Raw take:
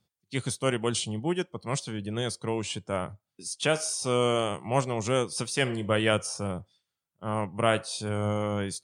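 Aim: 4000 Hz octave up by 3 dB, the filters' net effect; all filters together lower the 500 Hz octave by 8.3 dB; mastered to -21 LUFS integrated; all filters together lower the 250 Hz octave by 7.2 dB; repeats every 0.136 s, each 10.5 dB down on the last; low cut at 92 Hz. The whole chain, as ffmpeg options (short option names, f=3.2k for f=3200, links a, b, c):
-af "highpass=92,equalizer=f=250:t=o:g=-7,equalizer=f=500:t=o:g=-8.5,equalizer=f=4k:t=o:g=4.5,aecho=1:1:136|272|408:0.299|0.0896|0.0269,volume=10dB"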